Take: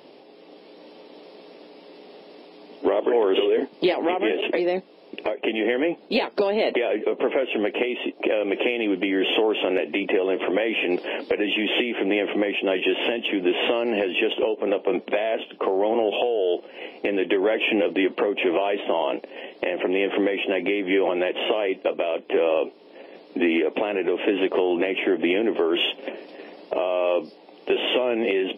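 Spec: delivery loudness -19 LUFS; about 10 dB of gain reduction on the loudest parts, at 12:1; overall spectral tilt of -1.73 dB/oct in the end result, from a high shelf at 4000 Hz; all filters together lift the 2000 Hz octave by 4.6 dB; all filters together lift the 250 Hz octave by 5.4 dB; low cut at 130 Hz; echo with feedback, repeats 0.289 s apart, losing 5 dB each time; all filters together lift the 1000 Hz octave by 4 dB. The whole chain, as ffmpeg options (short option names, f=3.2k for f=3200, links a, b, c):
-af "highpass=130,equalizer=f=250:t=o:g=7.5,equalizer=f=1k:t=o:g=4,equalizer=f=2k:t=o:g=7,highshelf=f=4k:g=-6.5,acompressor=threshold=-23dB:ratio=12,aecho=1:1:289|578|867|1156|1445|1734|2023:0.562|0.315|0.176|0.0988|0.0553|0.031|0.0173,volume=7dB"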